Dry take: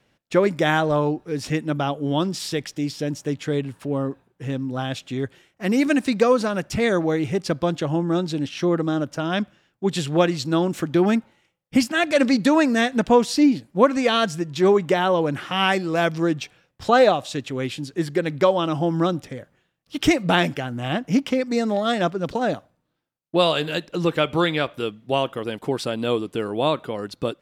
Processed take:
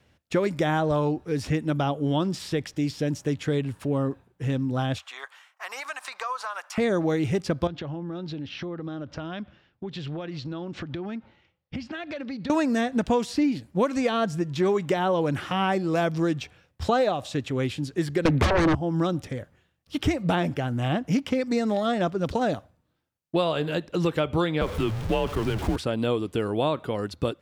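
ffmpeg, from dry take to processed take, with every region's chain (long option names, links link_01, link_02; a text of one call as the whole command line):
ffmpeg -i in.wav -filter_complex "[0:a]asettb=1/sr,asplit=3[link_01][link_02][link_03];[link_01]atrim=end=4.984[link_04];[link_02]atrim=start=4.98:end=6.78,asetpts=PTS-STARTPTS,afade=type=in:duration=0.004:curve=qsin,afade=type=out:start_time=1.796:duration=0.004:curve=qsin,highpass=frequency=800:width=0.5412,highpass=frequency=800:width=1.3066,equalizer=frequency=1100:width_type=o:width=0.97:gain=10.5,acompressor=threshold=-30dB:ratio=3:attack=3.2:release=140:knee=1:detection=peak[link_05];[link_03]atrim=start=6.776[link_06];[link_04][link_05]acrossfade=duration=0.004:curve1=hsin:curve2=qsin[link_07];[link_07][link_06]acrossfade=duration=0.004:curve1=qsin:curve2=hsin,asettb=1/sr,asplit=3[link_08][link_09][link_10];[link_08]atrim=end=7.674[link_11];[link_09]atrim=start=7.67:end=12.5,asetpts=PTS-STARTPTS,afade=type=in:duration=0.004:curve=qsin,afade=type=out:start_time=4.826:duration=0.004:curve=qsin,acompressor=threshold=-31dB:ratio=10:attack=3.2:release=140:knee=1:detection=peak,lowpass=frequency=4700:width=0.5412,lowpass=frequency=4700:width=1.3066[link_12];[link_10]atrim=start=12.496[link_13];[link_11][link_12]acrossfade=duration=0.004:curve1=hsin:curve2=qsin[link_14];[link_14][link_13]acrossfade=duration=0.004:curve1=qsin:curve2=hsin,asettb=1/sr,asplit=3[link_15][link_16][link_17];[link_15]atrim=end=18.254[link_18];[link_16]atrim=start=18.25:end=18.75,asetpts=PTS-STARTPTS,afade=type=in:duration=0.004:curve=qsin,afade=type=out:start_time=0.496:duration=0.004:curve=qsin,highpass=160,highshelf=frequency=3300:gain=-10,aeval=exprs='0.562*sin(PI/2*7.94*val(0)/0.562)':channel_layout=same[link_19];[link_17]atrim=start=18.746[link_20];[link_18][link_19]acrossfade=duration=0.004:curve1=hsin:curve2=qsin[link_21];[link_21][link_20]acrossfade=duration=0.004:curve1=qsin:curve2=hsin,asettb=1/sr,asplit=3[link_22][link_23][link_24];[link_22]atrim=end=24.614[link_25];[link_23]atrim=start=24.61:end=25.76,asetpts=PTS-STARTPTS,afade=type=in:duration=0.004:curve=qsin,afade=type=out:start_time=1.146:duration=0.004:curve=qsin,aeval=exprs='val(0)+0.5*0.0376*sgn(val(0))':channel_layout=same,highshelf=frequency=5900:gain=-6.5,afreqshift=-94[link_26];[link_24]atrim=start=25.756[link_27];[link_25][link_26]acrossfade=duration=0.004:curve1=hsin:curve2=qsin[link_28];[link_28][link_27]acrossfade=duration=0.004:curve1=qsin:curve2=hsin,equalizer=frequency=77:width_type=o:width=0.74:gain=14.5,acrossover=split=1300|2600[link_29][link_30][link_31];[link_29]acompressor=threshold=-21dB:ratio=4[link_32];[link_30]acompressor=threshold=-40dB:ratio=4[link_33];[link_31]acompressor=threshold=-40dB:ratio=4[link_34];[link_32][link_33][link_34]amix=inputs=3:normalize=0" out.wav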